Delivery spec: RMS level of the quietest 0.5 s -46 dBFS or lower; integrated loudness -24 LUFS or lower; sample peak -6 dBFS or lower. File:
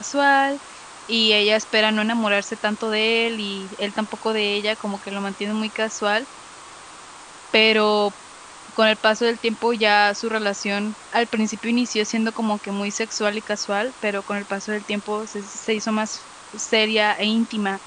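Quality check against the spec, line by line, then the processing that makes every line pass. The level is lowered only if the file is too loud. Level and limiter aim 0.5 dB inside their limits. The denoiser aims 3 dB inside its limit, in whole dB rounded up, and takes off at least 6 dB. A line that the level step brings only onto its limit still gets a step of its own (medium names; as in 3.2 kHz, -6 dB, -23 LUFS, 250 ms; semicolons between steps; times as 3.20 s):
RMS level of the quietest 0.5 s -42 dBFS: fail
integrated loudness -21.0 LUFS: fail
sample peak -3.0 dBFS: fail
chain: noise reduction 6 dB, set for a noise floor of -42 dBFS; trim -3.5 dB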